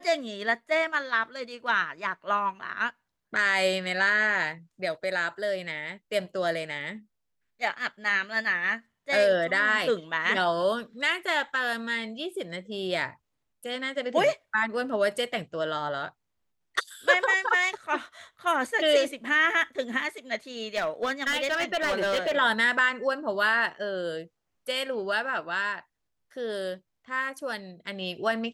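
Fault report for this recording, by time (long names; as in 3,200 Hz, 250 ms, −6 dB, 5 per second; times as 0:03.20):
0:20.76–0:22.36: clipping −22.5 dBFS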